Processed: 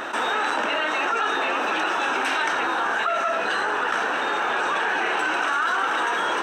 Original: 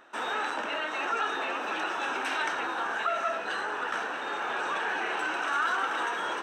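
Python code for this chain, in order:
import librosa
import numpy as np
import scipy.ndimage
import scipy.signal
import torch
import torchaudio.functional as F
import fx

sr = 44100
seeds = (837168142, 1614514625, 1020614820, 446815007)

y = fx.env_flatten(x, sr, amount_pct=70)
y = F.gain(torch.from_numpy(y), 3.5).numpy()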